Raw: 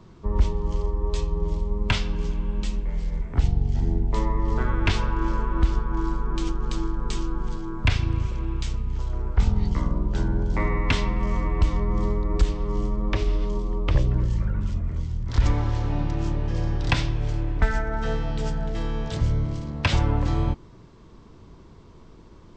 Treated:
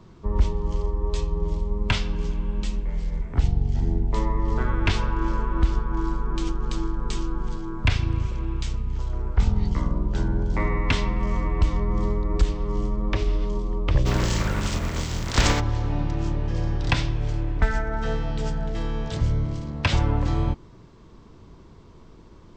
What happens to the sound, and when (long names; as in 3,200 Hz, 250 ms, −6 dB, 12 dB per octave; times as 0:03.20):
0:14.05–0:15.59: compressing power law on the bin magnitudes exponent 0.54